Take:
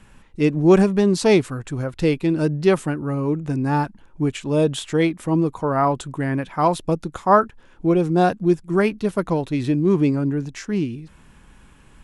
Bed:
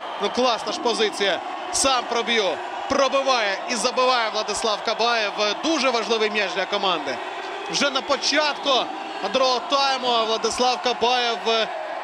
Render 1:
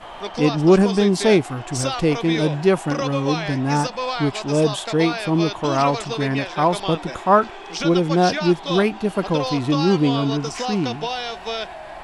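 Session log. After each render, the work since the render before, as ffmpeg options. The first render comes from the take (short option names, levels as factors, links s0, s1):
-filter_complex "[1:a]volume=0.473[s0];[0:a][s0]amix=inputs=2:normalize=0"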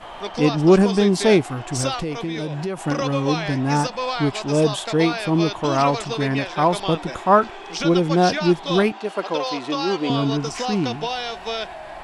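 -filter_complex "[0:a]asettb=1/sr,asplit=3[s0][s1][s2];[s0]atrim=end=1.954[s3];[s1]atrim=start=1.95:end=2.81,asetpts=PTS-STARTPTS,afade=t=in:d=0.004:c=qsin,afade=t=out:st=0.856:d=0.004:c=qsin,acompressor=threshold=0.0708:ratio=6:attack=3.2:release=140:knee=1:detection=peak[s4];[s2]atrim=start=2.806[s5];[s3][s4]acrossfade=d=0.004:c1=hsin:c2=qsin[s6];[s6][s5]acrossfade=d=0.004:c1=qsin:c2=hsin,asettb=1/sr,asplit=3[s7][s8][s9];[s7]atrim=end=8.924[s10];[s8]atrim=start=8.92:end=10.1,asetpts=PTS-STARTPTS,afade=t=in:d=0.004:c=qsin,afade=t=out:st=1.176:d=0.004:c=qsin,highpass=410,lowpass=7500[s11];[s9]atrim=start=10.096[s12];[s10][s11]acrossfade=d=0.004:c1=hsin:c2=qsin[s13];[s13][s12]acrossfade=d=0.004:c1=qsin:c2=hsin"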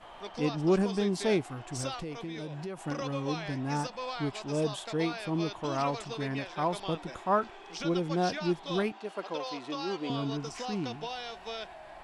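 -af "volume=0.251"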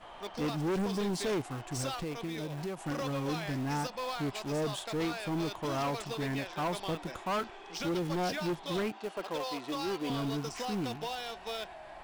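-filter_complex "[0:a]asplit=2[s0][s1];[s1]acrusher=bits=5:mix=0:aa=0.000001,volume=0.355[s2];[s0][s2]amix=inputs=2:normalize=0,asoftclip=type=tanh:threshold=0.0376"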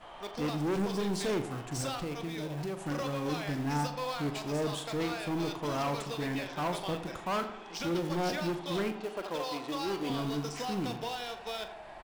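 -filter_complex "[0:a]asplit=2[s0][s1];[s1]adelay=41,volume=0.266[s2];[s0][s2]amix=inputs=2:normalize=0,asplit=2[s3][s4];[s4]adelay=83,lowpass=f=2300:p=1,volume=0.282,asplit=2[s5][s6];[s6]adelay=83,lowpass=f=2300:p=1,volume=0.55,asplit=2[s7][s8];[s8]adelay=83,lowpass=f=2300:p=1,volume=0.55,asplit=2[s9][s10];[s10]adelay=83,lowpass=f=2300:p=1,volume=0.55,asplit=2[s11][s12];[s12]adelay=83,lowpass=f=2300:p=1,volume=0.55,asplit=2[s13][s14];[s14]adelay=83,lowpass=f=2300:p=1,volume=0.55[s15];[s3][s5][s7][s9][s11][s13][s15]amix=inputs=7:normalize=0"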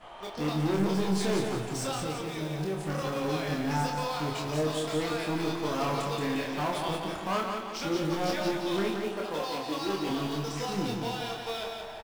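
-filter_complex "[0:a]asplit=2[s0][s1];[s1]adelay=26,volume=0.708[s2];[s0][s2]amix=inputs=2:normalize=0,aecho=1:1:175|350|525|700|875|1050:0.562|0.253|0.114|0.0512|0.0231|0.0104"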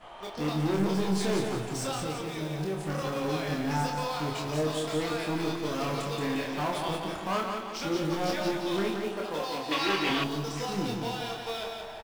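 -filter_complex "[0:a]asettb=1/sr,asplit=3[s0][s1][s2];[s0]atrim=end=5.564[s3];[s1]atrim=start=5.56:end=6.18,asetpts=PTS-STARTPTS,afade=t=in:d=0.004:c=qsin,afade=t=out:st=0.616:d=0.004:c=qsin,equalizer=f=890:t=o:w=0.77:g=-5.5[s4];[s2]atrim=start=6.176[s5];[s3][s4]acrossfade=d=0.004:c1=hsin:c2=qsin[s6];[s6][s5]acrossfade=d=0.004:c1=qsin:c2=hsin,asettb=1/sr,asplit=3[s7][s8][s9];[s7]atrim=end=9.714[s10];[s8]atrim=start=9.71:end=10.24,asetpts=PTS-STARTPTS,afade=t=in:d=0.004:c=qsin,afade=t=out:st=0.526:d=0.004:c=qsin,equalizer=f=2200:t=o:w=1.7:g=14[s11];[s9]atrim=start=10.236[s12];[s10][s11]acrossfade=d=0.004:c1=hsin:c2=qsin[s13];[s13][s12]acrossfade=d=0.004:c1=qsin:c2=hsin"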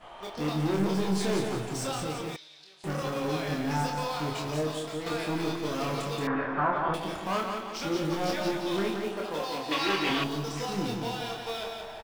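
-filter_complex "[0:a]asettb=1/sr,asplit=3[s0][s1][s2];[s0]atrim=end=2.364[s3];[s1]atrim=start=2.36:end=2.84,asetpts=PTS-STARTPTS,afade=t=in:d=0.004:c=qsin,afade=t=out:st=0.476:d=0.004:c=qsin,bandpass=f=4200:t=q:w=3[s4];[s2]atrim=start=2.836[s5];[s3][s4]acrossfade=d=0.004:c1=hsin:c2=qsin[s6];[s6][s5]acrossfade=d=0.004:c1=qsin:c2=hsin,asettb=1/sr,asplit=3[s7][s8][s9];[s7]atrim=end=6.274[s10];[s8]atrim=start=6.27:end=6.94,asetpts=PTS-STARTPTS,afade=t=in:d=0.004:c=qsin,afade=t=out:st=0.666:d=0.004:c=qsin,lowpass=f=1400:t=q:w=4.1[s11];[s9]atrim=start=6.936[s12];[s10][s11]acrossfade=d=0.004:c1=hsin:c2=qsin[s13];[s13][s12]acrossfade=d=0.004:c1=qsin:c2=hsin,asplit=2[s14][s15];[s14]atrim=end=5.06,asetpts=PTS-STARTPTS,afade=t=out:st=4.48:d=0.58:silence=0.446684[s16];[s15]atrim=start=5.06,asetpts=PTS-STARTPTS,afade=t=in:d=0.004:c=hsin:silence=0.446684[s17];[s16][s17]concat=n=2:v=0:a=1"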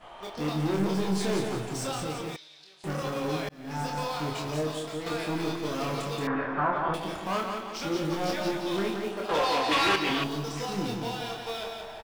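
-filter_complex "[0:a]asettb=1/sr,asplit=3[s0][s1][s2];[s0]atrim=end=9.294[s3];[s1]atrim=start=9.29:end=9.96,asetpts=PTS-STARTPTS,afade=t=in:d=0.004:c=qsin,afade=t=out:st=0.666:d=0.004:c=qsin,asplit=2[s4][s5];[s5]highpass=f=720:p=1,volume=10,asoftclip=type=tanh:threshold=0.168[s6];[s4][s6]amix=inputs=2:normalize=0,lowpass=f=3000:p=1,volume=0.501[s7];[s2]atrim=start=9.956[s8];[s3][s7]acrossfade=d=0.004:c1=hsin:c2=qsin[s9];[s9][s8]acrossfade=d=0.004:c1=qsin:c2=hsin,asplit=2[s10][s11];[s10]atrim=end=3.49,asetpts=PTS-STARTPTS,afade=t=out:st=3.486:d=0.004:c=hsin[s12];[s11]atrim=start=3.49,asetpts=PTS-STARTPTS,afade=t=in:d=0.48[s13];[s12][s13]concat=n=2:v=0:a=1"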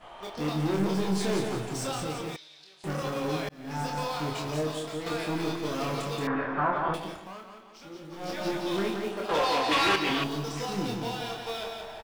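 -filter_complex "[0:a]asplit=3[s0][s1][s2];[s0]atrim=end=7.34,asetpts=PTS-STARTPTS,afade=t=out:st=6.89:d=0.45:silence=0.188365[s3];[s1]atrim=start=7.34:end=8.11,asetpts=PTS-STARTPTS,volume=0.188[s4];[s2]atrim=start=8.11,asetpts=PTS-STARTPTS,afade=t=in:d=0.45:silence=0.188365[s5];[s3][s4][s5]concat=n=3:v=0:a=1"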